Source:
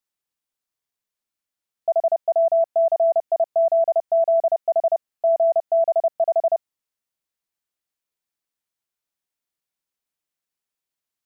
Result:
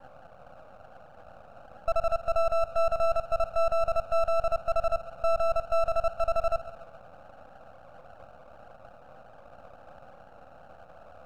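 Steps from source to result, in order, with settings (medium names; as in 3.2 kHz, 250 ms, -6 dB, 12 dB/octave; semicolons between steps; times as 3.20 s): filtered feedback delay 136 ms, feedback 67%, low-pass 840 Hz, level -13 dB; band noise 500–820 Hz -44 dBFS; half-wave rectifier; trim -2.5 dB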